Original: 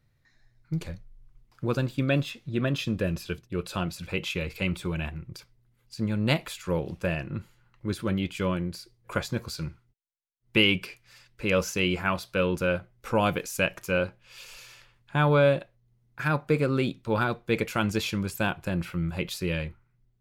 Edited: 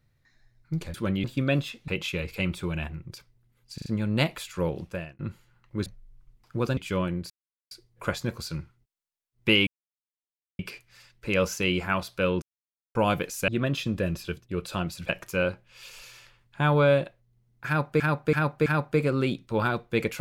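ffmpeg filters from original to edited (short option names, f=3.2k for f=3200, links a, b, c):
-filter_complex "[0:a]asplit=19[a][b][c][d][e][f][g][h][i][j][k][l][m][n][o][p][q][r][s];[a]atrim=end=0.942[t];[b]atrim=start=7.958:end=8.262[u];[c]atrim=start=1.848:end=2.492[v];[d]atrim=start=4.098:end=6.002[w];[e]atrim=start=5.958:end=6.002[x];[f]atrim=start=5.958:end=6.002[y];[g]atrim=start=5.958:end=7.29,asetpts=PTS-STARTPTS,afade=t=out:st=0.902:d=0.43[z];[h]atrim=start=7.29:end=7.962,asetpts=PTS-STARTPTS,afade=t=in:d=0.004:c=hsin[aa];[i]atrim=start=0.938:end=1.852[ab];[j]atrim=start=8.258:end=8.79,asetpts=PTS-STARTPTS,afade=t=out:st=0.528:d=0.004:c=hsin,apad=pad_dur=0.41[ac];[k]atrim=start=8.79:end=10.75,asetpts=PTS-STARTPTS,afade=t=in:d=0.004:c=hsin,afade=t=out:st=1.956:d=0.004:c=hsin,apad=pad_dur=0.92[ad];[l]atrim=start=10.75:end=12.58,asetpts=PTS-STARTPTS,afade=t=in:d=0.004:c=hsin,afade=t=out:st=1.826:d=0.004:c=hsin[ae];[m]atrim=start=12.58:end=13.11,asetpts=PTS-STARTPTS,volume=0[af];[n]atrim=start=13.11:end=13.642,asetpts=PTS-STARTPTS,afade=t=in:d=0.004:c=hsin[ag];[o]atrim=start=2.488:end=4.102[ah];[p]atrim=start=13.638:end=16.552[ai];[q]atrim=start=16.218:end=16.552[aj];[r]atrim=start=16.218:end=16.552[ak];[s]atrim=start=16.218[al];[t][u]acrossfade=d=0.004:c1=hsin:c2=hsin[am];[am][v]acrossfade=d=0.004:c1=hsin:c2=hsin[an];[an][w]acrossfade=d=0.004:c1=hsin:c2=hsin[ao];[ao][x]acrossfade=d=0.004:c1=hsin:c2=hsin[ap];[ap][y]acrossfade=d=0.004:c1=hsin:c2=hsin[aq];[z][aa]concat=n=2:v=0:a=1[ar];[aq][ar]acrossfade=d=0.004:c1=hsin:c2=hsin[as];[as][ab]acrossfade=d=0.004:c1=hsin:c2=hsin[at];[ac][ad][ae][af][ag]concat=n=5:v=0:a=1[au];[at][au]acrossfade=d=0.004:c1=hsin:c2=hsin[av];[av][ah]acrossfade=d=0.004:c1=hsin:c2=hsin[aw];[aw][ai]acrossfade=d=0.004:c1=hsin:c2=hsin[ax];[ax][aj]acrossfade=d=0.004:c1=hsin:c2=hsin[ay];[ay][ak]acrossfade=d=0.004:c1=hsin:c2=hsin[az];[az][al]acrossfade=d=0.004:c1=hsin:c2=hsin"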